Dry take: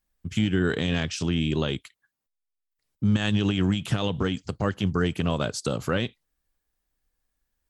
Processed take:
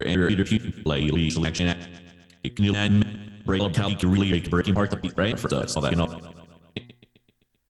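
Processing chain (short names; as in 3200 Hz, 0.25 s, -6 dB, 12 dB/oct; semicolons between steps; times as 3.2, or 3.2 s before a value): slices in reverse order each 0.144 s, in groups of 6; vibrato 0.65 Hz 36 cents; de-hum 120.7 Hz, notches 17; on a send: feedback echo 0.13 s, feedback 59%, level -16.5 dB; on the sum: gain +3 dB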